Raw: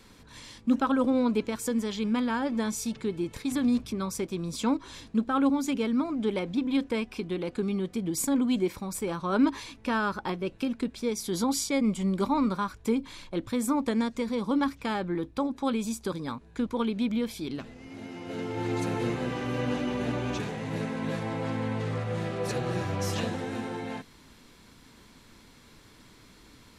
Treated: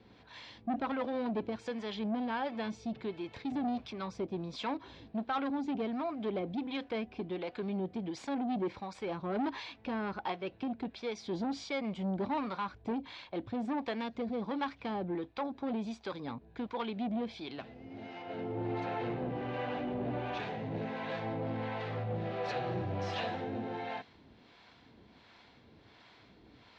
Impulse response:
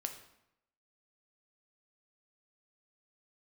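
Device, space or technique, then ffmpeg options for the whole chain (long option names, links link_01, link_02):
guitar amplifier with harmonic tremolo: -filter_complex "[0:a]asettb=1/sr,asplit=3[link_01][link_02][link_03];[link_01]atrim=end=18.224[link_04];[link_02]atrim=start=18.22:end=20.37,asetpts=PTS-STARTPTS,afade=type=in:duration=0.004:curve=qsin,afade=type=out:start_time=2.146:duration=0.004:curve=qsin,highshelf=frequency=3500:gain=-10[link_05];[link_03]atrim=start=20.366[link_06];[link_04][link_05]acrossfade=duration=0.004:curve1=hsin:curve2=qsin[link_07];[link_07][link_06]acrossfade=duration=0.004:curve1=qsin:curve2=hsin,acrossover=split=570[link_08][link_09];[link_08]aeval=exprs='val(0)*(1-0.7/2+0.7/2*cos(2*PI*1.4*n/s))':channel_layout=same[link_10];[link_09]aeval=exprs='val(0)*(1-0.7/2-0.7/2*cos(2*PI*1.4*n/s))':channel_layout=same[link_11];[link_10][link_11]amix=inputs=2:normalize=0,asoftclip=type=tanh:threshold=-28.5dB,highpass=77,equalizer=frequency=160:width_type=q:width=4:gain=-4,equalizer=frequency=250:width_type=q:width=4:gain=-3,equalizer=frequency=720:width_type=q:width=4:gain=8,equalizer=frequency=1200:width_type=q:width=4:gain=-3,lowpass=frequency=4200:width=0.5412,lowpass=frequency=4200:width=1.3066"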